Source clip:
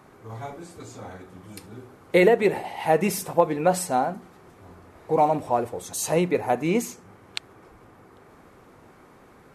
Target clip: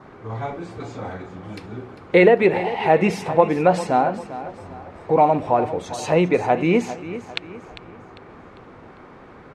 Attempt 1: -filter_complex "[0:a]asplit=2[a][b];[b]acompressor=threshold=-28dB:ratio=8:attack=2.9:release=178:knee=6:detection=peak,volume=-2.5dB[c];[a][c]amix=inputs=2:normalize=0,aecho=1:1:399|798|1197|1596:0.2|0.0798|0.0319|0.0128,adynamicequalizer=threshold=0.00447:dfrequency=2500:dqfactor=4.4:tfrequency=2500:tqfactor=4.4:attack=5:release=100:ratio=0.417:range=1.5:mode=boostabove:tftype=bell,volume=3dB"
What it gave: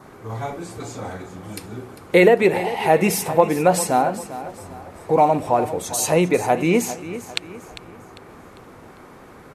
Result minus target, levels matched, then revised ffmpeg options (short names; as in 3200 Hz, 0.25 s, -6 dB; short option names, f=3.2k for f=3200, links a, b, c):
4000 Hz band +3.5 dB
-filter_complex "[0:a]asplit=2[a][b];[b]acompressor=threshold=-28dB:ratio=8:attack=2.9:release=178:knee=6:detection=peak,volume=-2.5dB[c];[a][c]amix=inputs=2:normalize=0,aecho=1:1:399|798|1197|1596:0.2|0.0798|0.0319|0.0128,adynamicequalizer=threshold=0.00447:dfrequency=2500:dqfactor=4.4:tfrequency=2500:tqfactor=4.4:attack=5:release=100:ratio=0.417:range=1.5:mode=boostabove:tftype=bell,lowpass=3.5k,volume=3dB"